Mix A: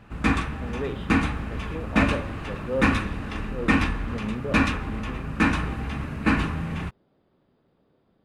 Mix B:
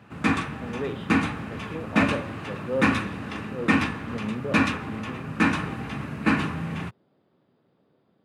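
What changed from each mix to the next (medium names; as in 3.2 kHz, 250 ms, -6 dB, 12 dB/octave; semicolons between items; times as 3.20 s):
master: add high-pass 100 Hz 24 dB/octave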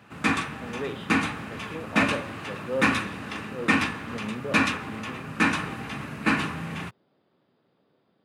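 master: add tilt EQ +1.5 dB/octave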